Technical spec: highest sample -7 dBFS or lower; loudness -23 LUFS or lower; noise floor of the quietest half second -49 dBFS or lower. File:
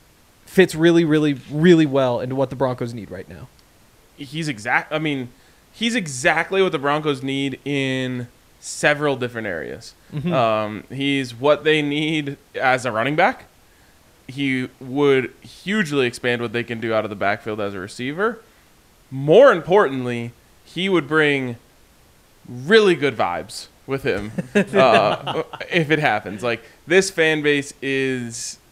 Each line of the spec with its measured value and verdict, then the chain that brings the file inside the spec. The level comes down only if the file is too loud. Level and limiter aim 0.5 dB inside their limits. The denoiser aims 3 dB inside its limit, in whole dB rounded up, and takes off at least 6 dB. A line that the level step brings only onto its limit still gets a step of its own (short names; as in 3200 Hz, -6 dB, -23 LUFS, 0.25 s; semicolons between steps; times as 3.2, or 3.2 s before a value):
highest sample -2.0 dBFS: fail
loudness -19.5 LUFS: fail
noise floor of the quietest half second -53 dBFS: OK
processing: gain -4 dB; limiter -7.5 dBFS